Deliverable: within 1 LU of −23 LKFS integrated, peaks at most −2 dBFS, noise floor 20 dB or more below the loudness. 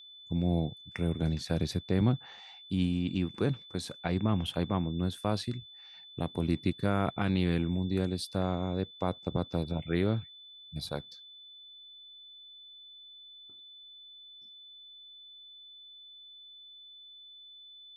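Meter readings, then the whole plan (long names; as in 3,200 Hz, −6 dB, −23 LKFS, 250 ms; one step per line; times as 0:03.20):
interfering tone 3,500 Hz; level of the tone −49 dBFS; integrated loudness −32.0 LKFS; sample peak −14.0 dBFS; target loudness −23.0 LKFS
→ notch filter 3,500 Hz, Q 30
level +9 dB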